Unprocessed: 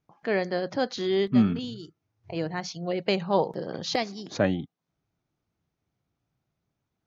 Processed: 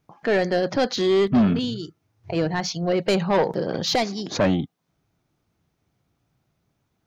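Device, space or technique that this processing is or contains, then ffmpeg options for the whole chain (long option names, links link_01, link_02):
saturation between pre-emphasis and de-emphasis: -af "highshelf=frequency=6200:gain=6.5,asoftclip=type=tanh:threshold=-22.5dB,highshelf=frequency=6200:gain=-6.5,volume=9dB"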